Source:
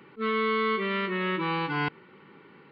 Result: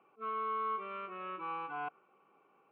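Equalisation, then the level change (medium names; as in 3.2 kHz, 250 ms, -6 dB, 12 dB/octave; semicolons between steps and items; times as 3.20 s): dynamic bell 1.4 kHz, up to +7 dB, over -47 dBFS, Q 3.4; vowel filter a; distance through air 360 m; +1.0 dB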